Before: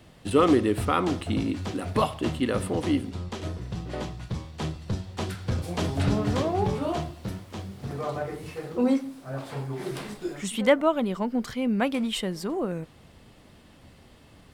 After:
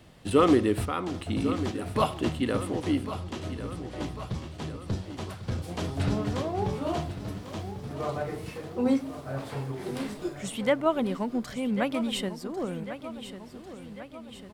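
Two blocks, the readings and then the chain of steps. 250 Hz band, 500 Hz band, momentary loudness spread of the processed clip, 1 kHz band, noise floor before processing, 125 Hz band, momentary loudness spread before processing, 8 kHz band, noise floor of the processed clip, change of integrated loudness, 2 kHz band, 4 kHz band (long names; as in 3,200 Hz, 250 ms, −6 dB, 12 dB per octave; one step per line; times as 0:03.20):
−2.0 dB, −2.0 dB, 13 LU, −2.0 dB, −53 dBFS, −2.5 dB, 13 LU, −2.5 dB, −45 dBFS, −2.0 dB, −3.0 dB, −2.0 dB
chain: sample-and-hold tremolo
repeating echo 1,097 ms, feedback 56%, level −12 dB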